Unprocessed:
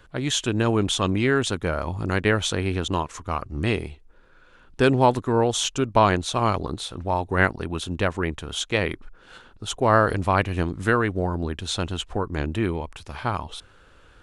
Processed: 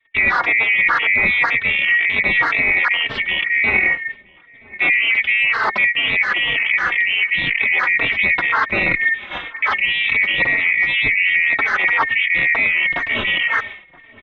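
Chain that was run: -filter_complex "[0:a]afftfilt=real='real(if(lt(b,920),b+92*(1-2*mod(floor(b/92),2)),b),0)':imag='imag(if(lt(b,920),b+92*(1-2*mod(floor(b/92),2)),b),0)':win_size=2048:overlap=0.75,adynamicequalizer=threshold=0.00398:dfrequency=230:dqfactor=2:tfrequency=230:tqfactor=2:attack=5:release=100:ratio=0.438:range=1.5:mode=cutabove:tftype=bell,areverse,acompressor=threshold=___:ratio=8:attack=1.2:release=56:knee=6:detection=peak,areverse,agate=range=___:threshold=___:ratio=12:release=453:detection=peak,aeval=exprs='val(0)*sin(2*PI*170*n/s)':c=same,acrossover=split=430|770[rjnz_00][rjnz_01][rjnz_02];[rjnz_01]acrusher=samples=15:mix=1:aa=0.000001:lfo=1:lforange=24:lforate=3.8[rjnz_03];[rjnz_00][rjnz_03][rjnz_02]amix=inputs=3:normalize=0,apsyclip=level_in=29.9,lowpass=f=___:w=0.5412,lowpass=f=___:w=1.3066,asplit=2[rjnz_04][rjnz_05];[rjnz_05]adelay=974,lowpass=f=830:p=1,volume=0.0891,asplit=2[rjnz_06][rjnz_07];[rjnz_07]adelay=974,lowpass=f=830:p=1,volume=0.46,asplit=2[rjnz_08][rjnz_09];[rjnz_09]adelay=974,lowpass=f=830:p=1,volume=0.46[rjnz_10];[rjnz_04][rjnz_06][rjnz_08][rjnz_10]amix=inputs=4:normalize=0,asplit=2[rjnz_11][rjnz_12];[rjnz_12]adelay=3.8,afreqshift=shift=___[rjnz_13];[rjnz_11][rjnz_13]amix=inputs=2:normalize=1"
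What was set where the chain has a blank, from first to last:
0.02, 0.0141, 0.00501, 2600, 2600, -2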